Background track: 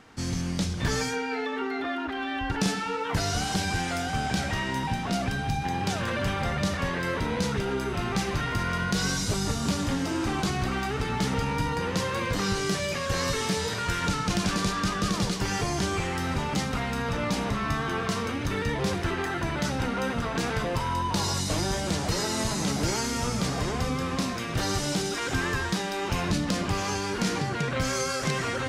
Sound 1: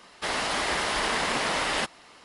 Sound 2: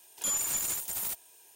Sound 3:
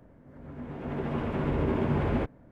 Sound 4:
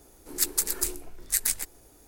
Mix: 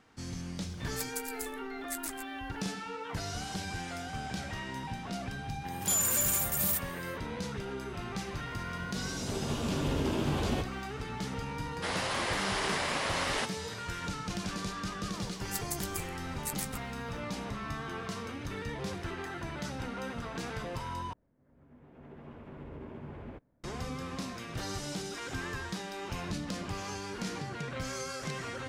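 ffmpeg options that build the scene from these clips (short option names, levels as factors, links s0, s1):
-filter_complex "[4:a]asplit=2[s0][s1];[3:a]asplit=2[s2][s3];[0:a]volume=0.316[s4];[s0]asoftclip=type=tanh:threshold=0.422[s5];[2:a]equalizer=f=15000:t=o:w=0.84:g=5[s6];[s2]aexciter=amount=10.1:drive=3:freq=3000[s7];[s4]asplit=2[s8][s9];[s8]atrim=end=21.134[s10];[s3]atrim=end=2.51,asetpts=PTS-STARTPTS,volume=0.133[s11];[s9]atrim=start=23.636[s12];[s5]atrim=end=2.07,asetpts=PTS-STARTPTS,volume=0.211,afade=t=in:d=0.004:c=hsin,afade=t=out:st=2.066:d=0.004:c=hsin,adelay=580[s13];[s6]atrim=end=1.55,asetpts=PTS-STARTPTS,afade=t=in:d=0.1,afade=t=out:st=1.45:d=0.1,adelay=5640[s14];[s7]atrim=end=2.51,asetpts=PTS-STARTPTS,volume=0.596,afade=t=in:d=0.004:c=hsin,afade=t=out:st=2.506:d=0.004:c=hsin,adelay=8370[s15];[1:a]atrim=end=2.24,asetpts=PTS-STARTPTS,volume=0.501,afade=t=in:d=0.004:c=hsin,afade=t=out:st=2.236:d=0.004:c=hsin,adelay=11600[s16];[s1]atrim=end=2.07,asetpts=PTS-STARTPTS,volume=0.237,afade=t=in:d=0.004:c=hsin,afade=t=out:st=2.066:d=0.004:c=hsin,adelay=15130[s17];[s10][s11]acrossfade=d=0.004:c1=hsin:c2=hsin[s18];[s18][s12]acrossfade=d=0.004:c1=hsin:c2=hsin[s19];[s19][s13][s14][s15][s16][s17]amix=inputs=6:normalize=0"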